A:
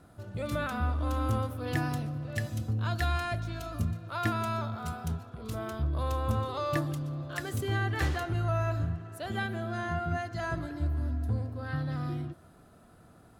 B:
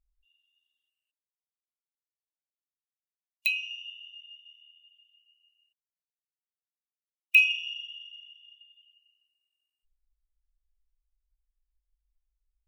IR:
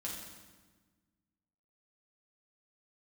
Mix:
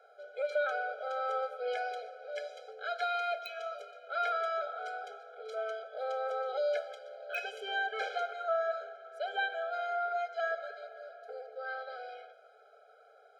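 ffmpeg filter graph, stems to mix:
-filter_complex "[0:a]lowpass=4200,volume=1.19,asplit=2[s0][s1];[s1]volume=0.316[s2];[1:a]volume=0.299[s3];[2:a]atrim=start_sample=2205[s4];[s2][s4]afir=irnorm=-1:irlink=0[s5];[s0][s3][s5]amix=inputs=3:normalize=0,highshelf=f=7300:g=-6.5,afftfilt=real='re*eq(mod(floor(b*sr/1024/420),2),1)':imag='im*eq(mod(floor(b*sr/1024/420),2),1)':win_size=1024:overlap=0.75"

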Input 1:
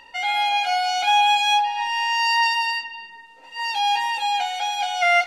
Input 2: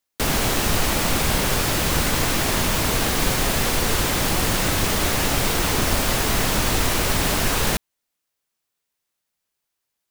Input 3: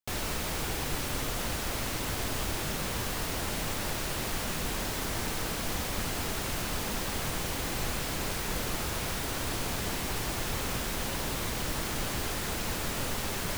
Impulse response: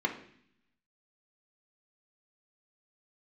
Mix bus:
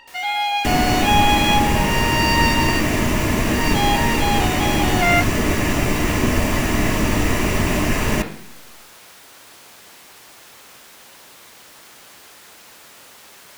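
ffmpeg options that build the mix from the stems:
-filter_complex "[0:a]volume=1[s0];[1:a]adelay=450,volume=0.891,asplit=2[s1][s2];[s2]volume=0.562[s3];[2:a]highpass=f=800:p=1,volume=0.376[s4];[3:a]atrim=start_sample=2205[s5];[s3][s5]afir=irnorm=-1:irlink=0[s6];[s0][s1][s4][s6]amix=inputs=4:normalize=0"

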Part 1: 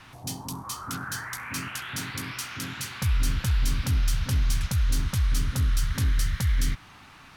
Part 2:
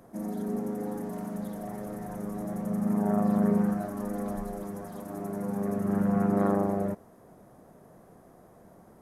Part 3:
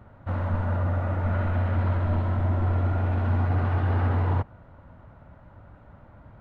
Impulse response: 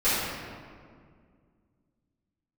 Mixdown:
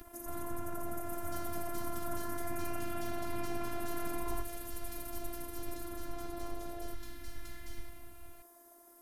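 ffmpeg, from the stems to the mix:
-filter_complex "[0:a]alimiter=limit=0.112:level=0:latency=1:release=136,adelay=1050,volume=0.112,asplit=2[s0][s1];[s1]volume=0.376[s2];[1:a]highpass=f=420:p=1,aemphasis=mode=production:type=75fm,acompressor=threshold=0.0112:ratio=4,volume=0.944[s3];[2:a]aeval=exprs='sgn(val(0))*max(abs(val(0))-0.00355,0)':c=same,acompressor=mode=upward:threshold=0.0355:ratio=2.5,volume=0.473[s4];[3:a]atrim=start_sample=2205[s5];[s2][s5]afir=irnorm=-1:irlink=0[s6];[s0][s3][s4][s6]amix=inputs=4:normalize=0,equalizer=f=190:t=o:w=0.37:g=6.5,afftfilt=real='hypot(re,im)*cos(PI*b)':imag='0':win_size=512:overlap=0.75"

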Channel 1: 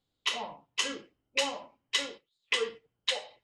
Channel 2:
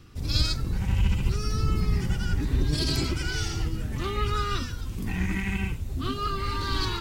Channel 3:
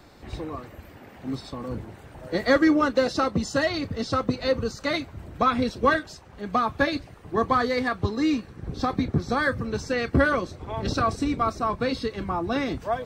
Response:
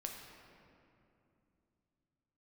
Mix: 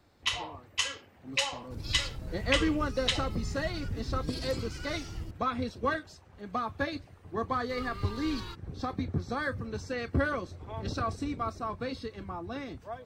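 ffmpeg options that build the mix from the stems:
-filter_complex "[0:a]highpass=700,volume=1.06[s0];[1:a]adelay=1550,volume=0.251,asplit=3[s1][s2][s3];[s1]atrim=end=5.31,asetpts=PTS-STARTPTS,afade=t=out:st=5.306:d=0.004:c=hsin[s4];[s2]atrim=start=5.31:end=7.69,asetpts=PTS-STARTPTS,volume=0[s5];[s3]atrim=start=7.69,asetpts=PTS-STARTPTS,afade=t=in:d=0.004:c=hsin[s6];[s4][s5][s6]concat=n=3:v=0:a=1[s7];[2:a]dynaudnorm=f=700:g=5:m=2,equalizer=f=90:t=o:w=0.33:g=8.5,volume=0.2[s8];[s0][s7][s8]amix=inputs=3:normalize=0"

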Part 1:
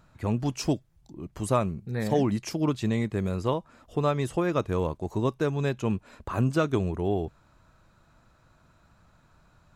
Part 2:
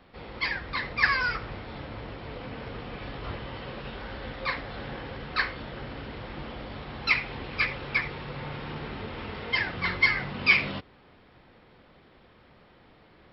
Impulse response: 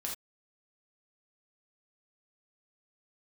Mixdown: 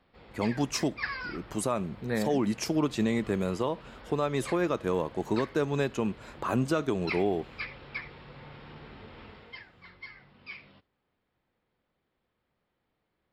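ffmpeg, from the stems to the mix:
-filter_complex "[0:a]highpass=190,agate=range=0.2:threshold=0.00141:ratio=16:detection=peak,adelay=150,volume=1.26,asplit=2[s0][s1];[s1]volume=0.0891[s2];[1:a]volume=0.266,afade=t=out:st=9.24:d=0.41:silence=0.237137,asplit=2[s3][s4];[s4]volume=0.106[s5];[2:a]atrim=start_sample=2205[s6];[s2][s5]amix=inputs=2:normalize=0[s7];[s7][s6]afir=irnorm=-1:irlink=0[s8];[s0][s3][s8]amix=inputs=3:normalize=0,alimiter=limit=0.15:level=0:latency=1:release=172"

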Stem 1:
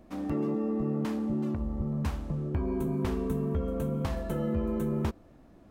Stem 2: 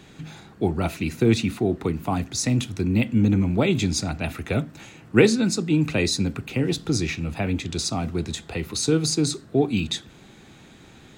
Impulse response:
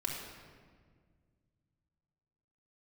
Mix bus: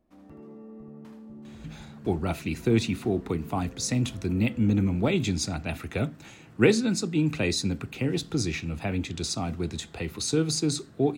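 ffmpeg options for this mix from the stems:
-filter_complex "[0:a]volume=0.15,asplit=2[s0][s1];[s1]volume=0.447[s2];[1:a]adelay=1450,volume=0.631[s3];[s2]aecho=0:1:77:1[s4];[s0][s3][s4]amix=inputs=3:normalize=0"

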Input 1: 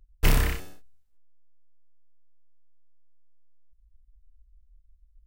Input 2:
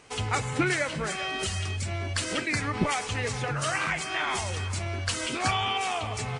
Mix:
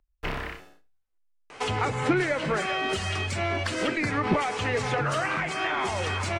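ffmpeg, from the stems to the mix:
-filter_complex "[0:a]acrossover=split=4600[s0][s1];[s1]acompressor=threshold=0.00708:ratio=4:attack=1:release=60[s2];[s0][s2]amix=inputs=2:normalize=0,volume=0.282,asplit=2[s3][s4];[s4]volume=0.119[s5];[1:a]adelay=1500,volume=1.26[s6];[s5]aecho=0:1:78:1[s7];[s3][s6][s7]amix=inputs=3:normalize=0,acrossover=split=470[s8][s9];[s9]acompressor=threshold=0.0224:ratio=10[s10];[s8][s10]amix=inputs=2:normalize=0,asplit=2[s11][s12];[s12]highpass=f=720:p=1,volume=7.94,asoftclip=type=tanh:threshold=0.266[s13];[s11][s13]amix=inputs=2:normalize=0,lowpass=f=1600:p=1,volume=0.501"

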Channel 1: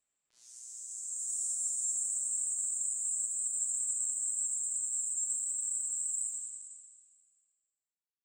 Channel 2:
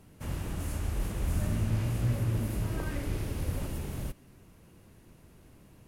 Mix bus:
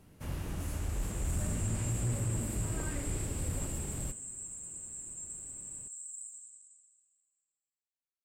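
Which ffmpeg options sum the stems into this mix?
-filter_complex "[0:a]volume=0.316[s0];[1:a]bandreject=f=109.6:t=h:w=4,bandreject=f=219.2:t=h:w=4,bandreject=f=328.8:t=h:w=4,bandreject=f=438.4:t=h:w=4,bandreject=f=548:t=h:w=4,bandreject=f=657.6:t=h:w=4,bandreject=f=767.2:t=h:w=4,bandreject=f=876.8:t=h:w=4,bandreject=f=986.4:t=h:w=4,bandreject=f=1096:t=h:w=4,bandreject=f=1205.6:t=h:w=4,bandreject=f=1315.2:t=h:w=4,bandreject=f=1424.8:t=h:w=4,bandreject=f=1534.4:t=h:w=4,bandreject=f=1644:t=h:w=4,bandreject=f=1753.6:t=h:w=4,bandreject=f=1863.2:t=h:w=4,bandreject=f=1972.8:t=h:w=4,bandreject=f=2082.4:t=h:w=4,bandreject=f=2192:t=h:w=4,bandreject=f=2301.6:t=h:w=4,bandreject=f=2411.2:t=h:w=4,bandreject=f=2520.8:t=h:w=4,bandreject=f=2630.4:t=h:w=4,bandreject=f=2740:t=h:w=4,bandreject=f=2849.6:t=h:w=4,bandreject=f=2959.2:t=h:w=4,bandreject=f=3068.8:t=h:w=4,bandreject=f=3178.4:t=h:w=4,bandreject=f=3288:t=h:w=4,bandreject=f=3397.6:t=h:w=4,bandreject=f=3507.2:t=h:w=4,bandreject=f=3616.8:t=h:w=4,asoftclip=type=hard:threshold=0.0531,volume=0.75[s1];[s0][s1]amix=inputs=2:normalize=0"

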